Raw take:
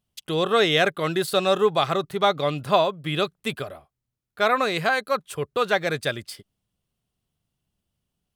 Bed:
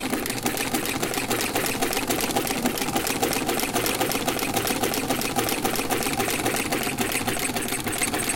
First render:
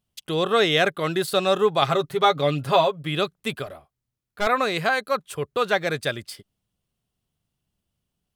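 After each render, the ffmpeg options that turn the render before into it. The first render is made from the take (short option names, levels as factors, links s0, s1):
-filter_complex "[0:a]asettb=1/sr,asplit=3[s0][s1][s2];[s0]atrim=end=1.814[s3];[s1]atrim=start=1.81:end=3.03,asetpts=PTS-STARTPTS,afade=t=in:d=0.004:c=qsin,afade=t=out:st=1.216:d=0.004:c=qsin,aecho=1:1:7.3:0.66,atrim=end_sample=53802[s4];[s2]atrim=start=3.026[s5];[s3][s4]acrossfade=d=0.004:c1=hsin:c2=qsin[s6];[s6][s5]acrossfade=d=0.004:c1=qsin:c2=hsin,asettb=1/sr,asplit=3[s7][s8][s9];[s7]atrim=end=3.664[s10];[s8]atrim=start=3.66:end=4.47,asetpts=PTS-STARTPTS,afade=t=in:d=0.004:c=qsin,afade=t=out:st=0.806:d=0.004:c=qsin,aeval=exprs='clip(val(0),-1,0.0224)':c=same[s11];[s9]atrim=start=4.466[s12];[s10][s11]acrossfade=d=0.004:c1=hsin:c2=qsin[s13];[s13][s12]acrossfade=d=0.004:c1=qsin:c2=hsin"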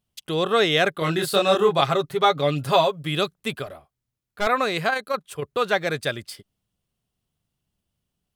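-filter_complex "[0:a]asettb=1/sr,asplit=3[s0][s1][s2];[s0]atrim=end=0.994[s3];[s1]atrim=start=0.99:end=1.81,asetpts=PTS-STARTPTS,afade=t=in:d=0.004:c=qsin,afade=t=out:st=0.816:d=0.004:c=qsin,asplit=2[s4][s5];[s5]adelay=25,volume=0.794[s6];[s4][s6]amix=inputs=2:normalize=0,atrim=end_sample=36162[s7];[s2]atrim=start=1.806[s8];[s3][s7]acrossfade=d=0.004:c1=hsin:c2=qsin[s9];[s9][s8]acrossfade=d=0.004:c1=qsin:c2=hsin,asettb=1/sr,asplit=3[s10][s11][s12];[s10]atrim=end=2.564[s13];[s11]atrim=start=2.56:end=3.34,asetpts=PTS-STARTPTS,afade=t=in:d=0.004:c=qsin,afade=t=out:st=0.776:d=0.004:c=qsin,bass=f=250:g=1,treble=f=4000:g=5[s14];[s12]atrim=start=3.336[s15];[s13][s14]acrossfade=d=0.004:c1=hsin:c2=qsin[s16];[s16][s15]acrossfade=d=0.004:c1=qsin:c2=hsin,asplit=3[s17][s18][s19];[s17]afade=t=out:st=4.88:d=0.02[s20];[s18]tremolo=f=28:d=0.462,afade=t=in:st=4.88:d=0.02,afade=t=out:st=5.42:d=0.02[s21];[s19]afade=t=in:st=5.42:d=0.02[s22];[s20][s21][s22]amix=inputs=3:normalize=0"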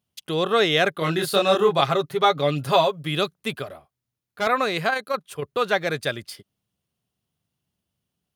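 -af "highpass=81,bandreject=f=7800:w=12"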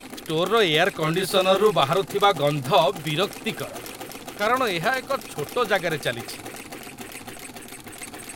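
-filter_complex "[1:a]volume=0.237[s0];[0:a][s0]amix=inputs=2:normalize=0"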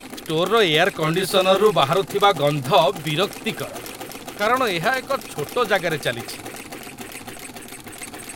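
-af "volume=1.33"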